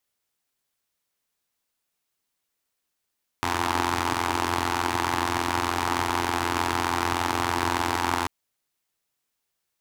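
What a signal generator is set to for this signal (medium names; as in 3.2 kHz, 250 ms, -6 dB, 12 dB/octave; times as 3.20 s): four-cylinder engine model, steady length 4.84 s, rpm 2600, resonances 110/310/880 Hz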